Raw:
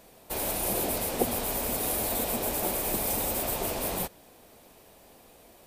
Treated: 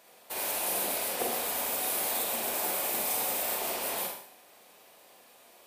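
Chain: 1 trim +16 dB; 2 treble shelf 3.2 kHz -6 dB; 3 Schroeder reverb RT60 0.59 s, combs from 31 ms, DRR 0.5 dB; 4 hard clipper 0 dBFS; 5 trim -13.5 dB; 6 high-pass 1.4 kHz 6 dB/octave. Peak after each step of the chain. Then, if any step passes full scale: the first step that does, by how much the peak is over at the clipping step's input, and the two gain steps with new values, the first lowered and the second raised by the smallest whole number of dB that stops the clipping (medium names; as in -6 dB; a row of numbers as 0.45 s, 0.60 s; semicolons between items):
+6.5 dBFS, +5.5 dBFS, +5.5 dBFS, 0.0 dBFS, -13.5 dBFS, -18.0 dBFS; step 1, 5.5 dB; step 1 +10 dB, step 5 -7.5 dB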